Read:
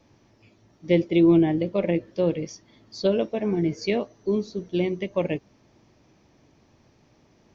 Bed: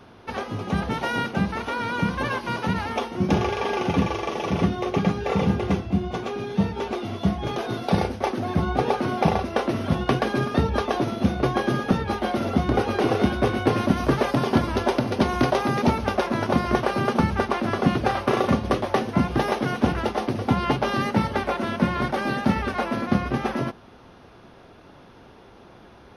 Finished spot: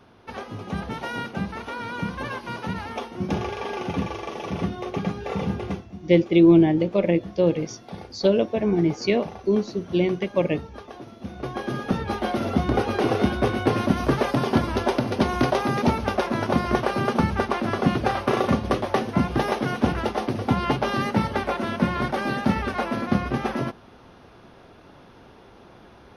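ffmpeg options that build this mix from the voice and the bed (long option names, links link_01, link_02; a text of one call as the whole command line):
ffmpeg -i stem1.wav -i stem2.wav -filter_complex "[0:a]adelay=5200,volume=3dB[link_01];[1:a]volume=11dB,afade=type=out:start_time=5.65:duration=0.28:silence=0.266073,afade=type=in:start_time=11.2:duration=1.03:silence=0.158489[link_02];[link_01][link_02]amix=inputs=2:normalize=0" out.wav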